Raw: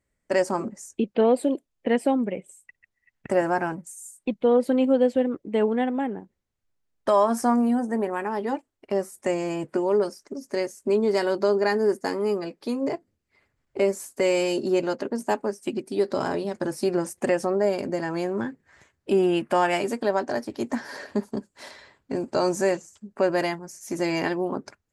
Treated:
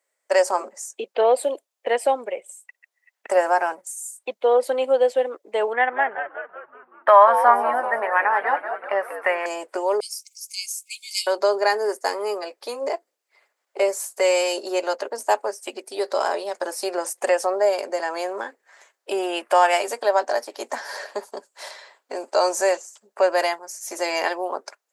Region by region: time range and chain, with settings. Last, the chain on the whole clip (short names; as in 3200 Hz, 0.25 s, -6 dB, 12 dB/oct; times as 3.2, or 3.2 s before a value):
5.73–9.46 EQ curve 260 Hz 0 dB, 370 Hz -6 dB, 1900 Hz +12 dB, 2800 Hz +1 dB, 7100 Hz -29 dB, 10000 Hz -11 dB + frequency-shifting echo 0.19 s, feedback 62%, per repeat -99 Hz, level -9 dB
10–11.27 brick-wall FIR high-pass 2100 Hz + high shelf 5400 Hz +11 dB
whole clip: HPF 550 Hz 24 dB/oct; bell 2000 Hz -4.5 dB 2.2 oct; gain +8.5 dB